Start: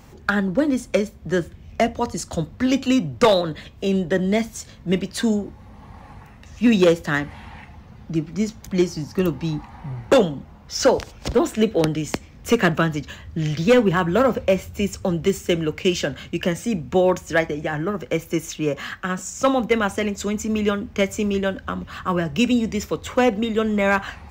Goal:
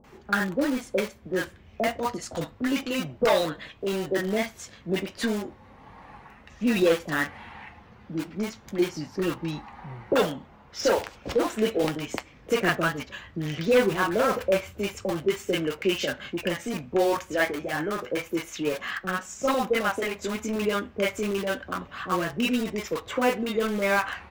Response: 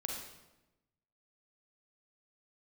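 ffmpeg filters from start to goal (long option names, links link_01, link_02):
-filter_complex "[0:a]bass=frequency=250:gain=-12,treble=frequency=4000:gain=-10,asplit=2[link_01][link_02];[link_02]aeval=exprs='(mod(14.1*val(0)+1,2)-1)/14.1':channel_layout=same,volume=-10dB[link_03];[link_01][link_03]amix=inputs=2:normalize=0,flanger=delay=4.6:depth=6.2:regen=-62:speed=0.31:shape=triangular,asoftclip=type=hard:threshold=-16dB,acrossover=split=640[link_04][link_05];[link_05]adelay=40[link_06];[link_04][link_06]amix=inputs=2:normalize=0,volume=2.5dB"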